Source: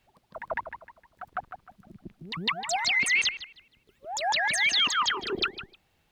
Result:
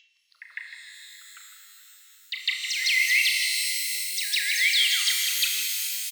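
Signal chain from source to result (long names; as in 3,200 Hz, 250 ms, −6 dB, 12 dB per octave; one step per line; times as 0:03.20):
upward compression, threshold −47 dBFS
elliptic band-pass filter 2,000–5,900 Hz, stop band 50 dB
slap from a distant wall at 300 metres, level −11 dB
in parallel at +2 dB: downward compressor, threshold −30 dBFS, peak gain reduction 9 dB
on the sum: noise reduction from a noise print of the clip's start 11 dB
on a send: flutter between parallel walls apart 6.1 metres, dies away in 0.26 s
on the sum: reverb with rising layers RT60 3.7 s, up +12 semitones, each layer −2 dB, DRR 3 dB
level −2.5 dB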